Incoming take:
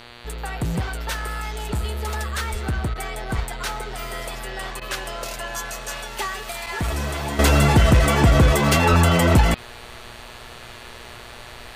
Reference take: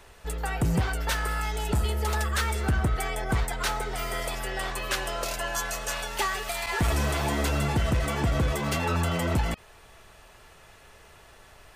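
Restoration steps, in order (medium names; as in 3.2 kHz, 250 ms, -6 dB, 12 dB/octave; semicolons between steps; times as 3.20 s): de-hum 119.5 Hz, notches 39; 2.51–2.63 s: high-pass 140 Hz 24 dB/octave; 3.35–3.47 s: high-pass 140 Hz 24 dB/octave; 8.89–9.01 s: high-pass 140 Hz 24 dB/octave; interpolate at 2.94/4.80 s, 13 ms; trim 0 dB, from 7.39 s -10.5 dB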